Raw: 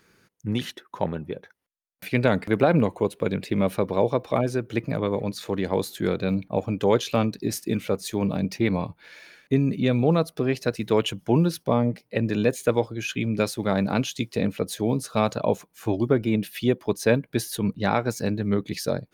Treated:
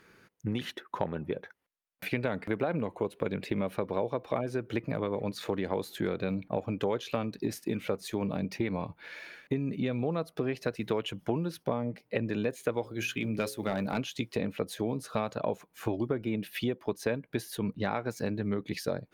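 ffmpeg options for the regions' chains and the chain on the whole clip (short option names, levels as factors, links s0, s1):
-filter_complex "[0:a]asettb=1/sr,asplit=3[s0][s1][s2];[s0]atrim=end=12.814[s3];[s1]atrim=start=12.81:end=13.98,asetpts=PTS-STARTPTS,afade=t=in:d=0.004:c=qsin,afade=t=out:st=1.166:d=0.004:c=qsin,highshelf=f=6300:g=11,bandreject=f=60:t=h:w=6,bandreject=f=120:t=h:w=6,bandreject=f=180:t=h:w=6,bandreject=f=240:t=h:w=6,bandreject=f=300:t=h:w=6,bandreject=f=360:t=h:w=6,bandreject=f=420:t=h:w=6,bandreject=f=480:t=h:w=6,bandreject=f=540:t=h:w=6,asoftclip=type=hard:threshold=0.168[s4];[s2]atrim=start=13.976[s5];[s3][s4]acrossfade=d=0.004:c1=hsin:c2=qsin[s6];[s6][s5]acrossfade=d=0.004:c1=qsin:c2=hsin,aemphasis=mode=production:type=cd,acompressor=threshold=0.0355:ratio=6,bass=f=250:g=-3,treble=f=4000:g=-15,volume=1.33"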